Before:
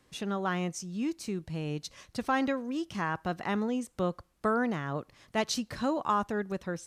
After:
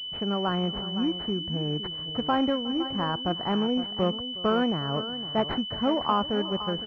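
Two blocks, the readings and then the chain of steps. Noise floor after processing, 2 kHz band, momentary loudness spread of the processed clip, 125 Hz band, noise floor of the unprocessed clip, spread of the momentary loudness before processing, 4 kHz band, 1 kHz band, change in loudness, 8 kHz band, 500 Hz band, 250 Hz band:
-36 dBFS, -2.5 dB, 4 LU, +5.0 dB, -67 dBFS, 7 LU, +15.0 dB, +3.5 dB, +5.0 dB, under -20 dB, +4.5 dB, +5.0 dB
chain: tapped delay 0.362/0.513 s -19.5/-12.5 dB; pulse-width modulation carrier 3000 Hz; gain +4.5 dB

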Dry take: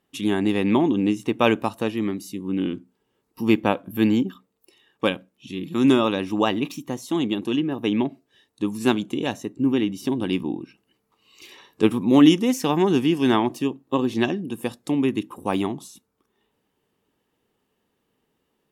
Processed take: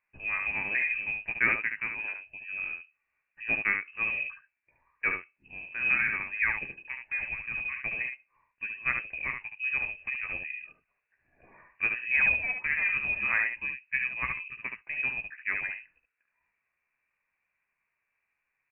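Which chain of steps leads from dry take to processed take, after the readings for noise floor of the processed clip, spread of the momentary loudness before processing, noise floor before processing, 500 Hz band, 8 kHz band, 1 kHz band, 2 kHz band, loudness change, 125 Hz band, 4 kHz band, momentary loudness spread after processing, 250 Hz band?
-82 dBFS, 11 LU, -74 dBFS, -25.5 dB, under -40 dB, -14.0 dB, +7.0 dB, -6.5 dB, -21.5 dB, under -20 dB, 12 LU, -32.0 dB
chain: three-band isolator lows -13 dB, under 410 Hz, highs -13 dB, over 2200 Hz; inverted band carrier 2800 Hz; early reflections 15 ms -7.5 dB, 72 ms -5.5 dB; gain -5 dB

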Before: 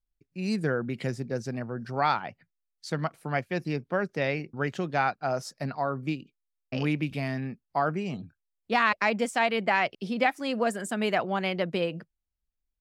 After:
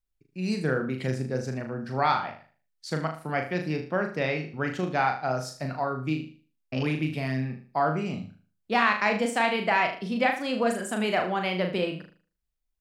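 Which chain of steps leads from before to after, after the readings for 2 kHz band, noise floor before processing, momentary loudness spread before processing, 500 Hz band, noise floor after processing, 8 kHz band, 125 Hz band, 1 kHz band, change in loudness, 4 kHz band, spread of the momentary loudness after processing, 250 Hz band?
+1.0 dB, -83 dBFS, 10 LU, +1.0 dB, -77 dBFS, +1.5 dB, +2.0 dB, +1.5 dB, +1.5 dB, +1.5 dB, 10 LU, +1.5 dB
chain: flutter echo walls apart 6.6 m, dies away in 0.41 s

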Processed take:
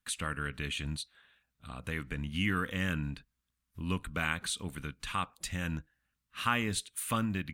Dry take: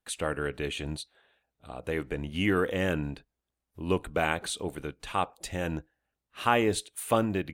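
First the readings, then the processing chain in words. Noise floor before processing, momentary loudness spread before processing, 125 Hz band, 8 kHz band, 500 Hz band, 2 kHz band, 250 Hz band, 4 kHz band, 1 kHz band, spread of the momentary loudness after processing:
under -85 dBFS, 13 LU, -1.0 dB, -0.5 dB, -14.0 dB, -1.5 dB, -4.5 dB, -1.0 dB, -6.0 dB, 11 LU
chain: band shelf 520 Hz -13 dB; in parallel at +1 dB: compressor, threshold -41 dBFS, peak gain reduction 18 dB; on the sum: gain -3.5 dB

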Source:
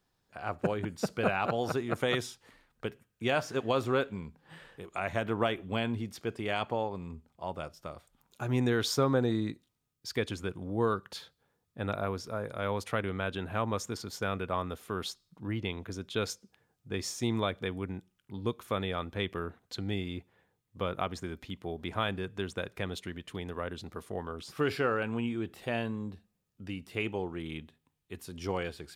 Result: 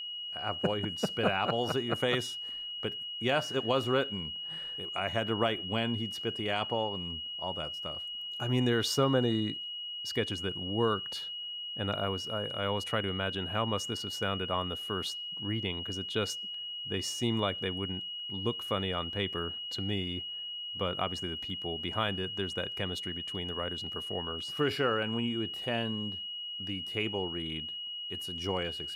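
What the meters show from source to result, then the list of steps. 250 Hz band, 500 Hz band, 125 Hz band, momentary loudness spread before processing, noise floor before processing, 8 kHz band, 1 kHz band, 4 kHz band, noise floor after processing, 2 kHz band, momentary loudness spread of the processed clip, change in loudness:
0.0 dB, 0.0 dB, 0.0 dB, 13 LU, -80 dBFS, 0.0 dB, 0.0 dB, +11.5 dB, -40 dBFS, 0.0 dB, 7 LU, +1.5 dB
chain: whine 2900 Hz -37 dBFS

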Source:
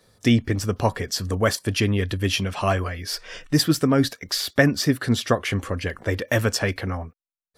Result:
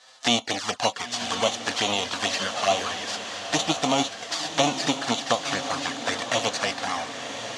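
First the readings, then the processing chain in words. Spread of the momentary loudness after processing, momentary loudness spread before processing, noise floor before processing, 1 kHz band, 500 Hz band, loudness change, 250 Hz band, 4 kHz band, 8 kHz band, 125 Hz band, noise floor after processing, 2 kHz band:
6 LU, 10 LU, under -85 dBFS, +4.0 dB, -3.0 dB, -2.5 dB, -8.0 dB, +3.0 dB, +2.0 dB, -16.5 dB, -40 dBFS, -1.5 dB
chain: spectral whitening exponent 0.3; in parallel at -2 dB: compressor 8:1, threshold -26 dBFS, peak gain reduction 15 dB; on the sum: envelope flanger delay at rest 8.1 ms, full sweep at -15 dBFS; speaker cabinet 330–6300 Hz, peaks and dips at 380 Hz -9 dB, 750 Hz +7 dB, 2300 Hz -6 dB, 5400 Hz -3 dB; diffused feedback echo 1.019 s, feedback 51%, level -8.5 dB; mismatched tape noise reduction encoder only

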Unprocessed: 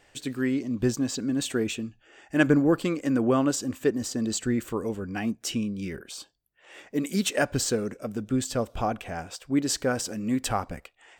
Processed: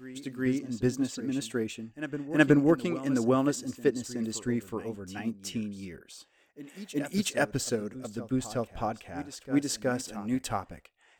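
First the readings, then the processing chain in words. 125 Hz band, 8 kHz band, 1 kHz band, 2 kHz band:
-3.0 dB, -6.0 dB, -3.5 dB, -2.0 dB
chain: reverse echo 0.37 s -9.5 dB; upward expander 1.5:1, over -33 dBFS

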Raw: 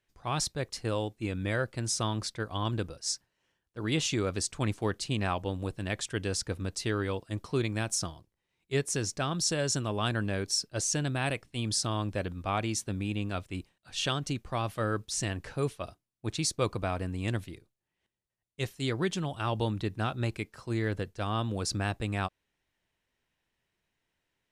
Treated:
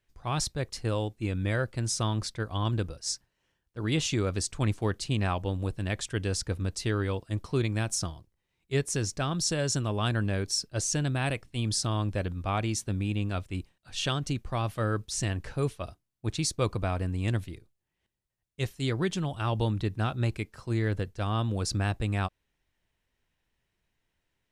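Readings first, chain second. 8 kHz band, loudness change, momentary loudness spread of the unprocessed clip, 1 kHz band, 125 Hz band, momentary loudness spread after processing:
0.0 dB, +1.5 dB, 6 LU, 0.0 dB, +4.0 dB, 6 LU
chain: low shelf 98 Hz +10 dB

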